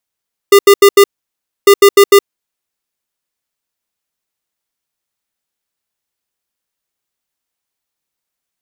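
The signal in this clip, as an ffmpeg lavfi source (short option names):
-f lavfi -i "aevalsrc='0.668*(2*lt(mod(401*t,1),0.5)-1)*clip(min(mod(mod(t,1.15),0.15),0.07-mod(mod(t,1.15),0.15))/0.005,0,1)*lt(mod(t,1.15),0.6)':d=2.3:s=44100"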